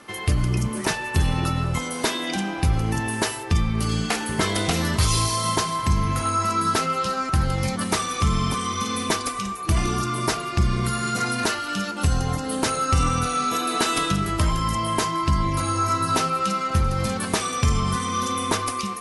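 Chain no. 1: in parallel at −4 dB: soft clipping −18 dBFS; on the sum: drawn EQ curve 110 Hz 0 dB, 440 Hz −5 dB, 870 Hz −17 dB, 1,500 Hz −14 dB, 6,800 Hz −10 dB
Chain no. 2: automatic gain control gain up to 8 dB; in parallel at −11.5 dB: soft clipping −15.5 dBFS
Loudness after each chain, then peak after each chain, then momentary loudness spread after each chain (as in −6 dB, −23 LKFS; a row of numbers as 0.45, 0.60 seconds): −24.5, −15.5 LKFS; −9.0, −2.5 dBFS; 8, 4 LU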